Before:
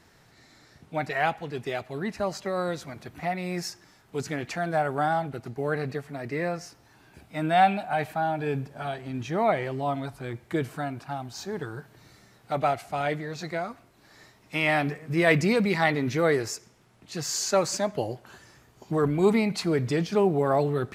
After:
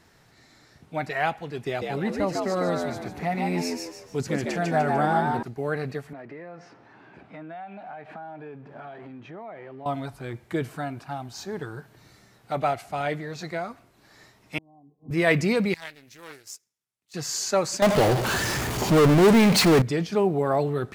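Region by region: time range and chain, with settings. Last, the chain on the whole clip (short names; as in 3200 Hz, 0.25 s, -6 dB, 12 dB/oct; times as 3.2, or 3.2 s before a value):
1.66–5.43 low shelf 350 Hz +5.5 dB + frequency-shifting echo 0.149 s, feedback 37%, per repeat +75 Hz, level -3 dB
6.13–9.86 G.711 law mismatch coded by mu + compressor 8:1, threshold -36 dBFS + BPF 180–2100 Hz
14.58–15.11 rippled Chebyshev low-pass 1100 Hz, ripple 9 dB + tilt -2.5 dB/oct + flipped gate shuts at -26 dBFS, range -29 dB
15.74–17.14 pre-emphasis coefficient 0.9 + power-law curve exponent 1.4 + Doppler distortion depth 0.32 ms
17.82–19.82 echo 88 ms -21.5 dB + power-law curve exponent 0.35
whole clip: dry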